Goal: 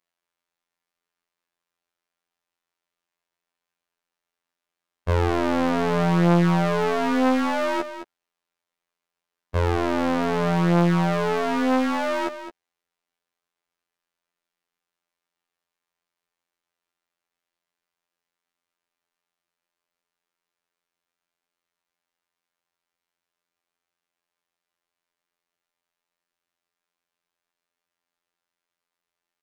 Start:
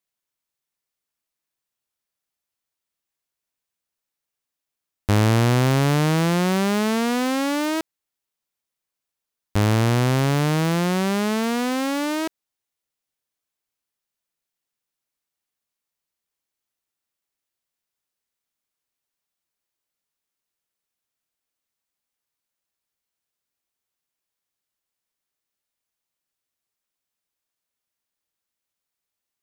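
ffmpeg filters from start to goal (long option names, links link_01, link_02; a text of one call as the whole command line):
ffmpeg -i in.wav -filter_complex "[0:a]acontrast=84,asplit=2[link_01][link_02];[link_02]highpass=frequency=720:poles=1,volume=9dB,asoftclip=type=tanh:threshold=-5.5dB[link_03];[link_01][link_03]amix=inputs=2:normalize=0,lowpass=frequency=1400:poles=1,volume=-6dB,afftfilt=real='hypot(re,im)*cos(PI*b)':imag='0':win_size=2048:overlap=0.75,aecho=1:1:214:0.282" out.wav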